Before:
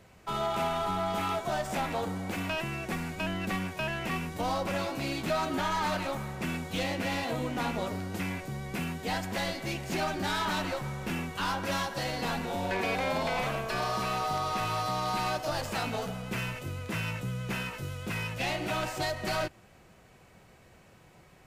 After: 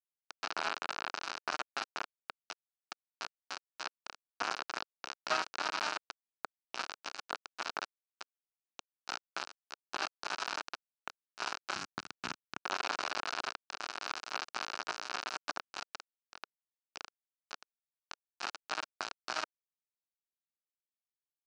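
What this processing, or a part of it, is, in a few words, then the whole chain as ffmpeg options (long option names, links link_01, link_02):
hand-held game console: -filter_complex "[0:a]acrusher=bits=3:mix=0:aa=0.000001,highpass=470,equalizer=frequency=500:width_type=q:width=4:gain=-9,equalizer=frequency=1400:width_type=q:width=4:gain=5,equalizer=frequency=2000:width_type=q:width=4:gain=-9,equalizer=frequency=3400:width_type=q:width=4:gain=-9,lowpass=frequency=5100:width=0.5412,lowpass=frequency=5100:width=1.3066,asplit=3[link_01][link_02][link_03];[link_01]afade=type=out:start_time=11.74:duration=0.02[link_04];[link_02]asubboost=boost=11:cutoff=170,afade=type=in:start_time=11.74:duration=0.02,afade=type=out:start_time=12.59:duration=0.02[link_05];[link_03]afade=type=in:start_time=12.59:duration=0.02[link_06];[link_04][link_05][link_06]amix=inputs=3:normalize=0,volume=1dB"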